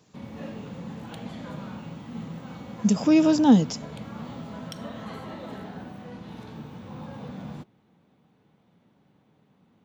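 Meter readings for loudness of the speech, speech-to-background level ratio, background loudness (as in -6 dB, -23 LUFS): -20.5 LUFS, 18.5 dB, -39.0 LUFS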